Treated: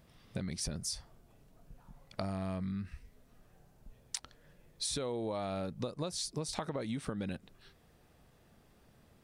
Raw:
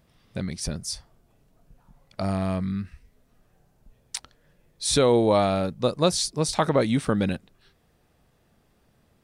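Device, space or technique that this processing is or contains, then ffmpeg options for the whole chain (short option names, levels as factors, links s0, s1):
serial compression, peaks first: -af "acompressor=threshold=0.0355:ratio=5,acompressor=threshold=0.0158:ratio=2.5"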